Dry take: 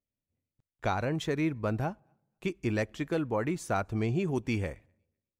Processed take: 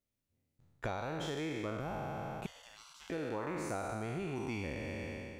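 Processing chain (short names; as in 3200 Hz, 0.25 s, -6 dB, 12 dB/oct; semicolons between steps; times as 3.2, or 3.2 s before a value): spectral trails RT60 2.04 s; compressor 6:1, threshold -36 dBFS, peak gain reduction 14 dB; 2.46–3.1 spectral gate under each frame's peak -25 dB weak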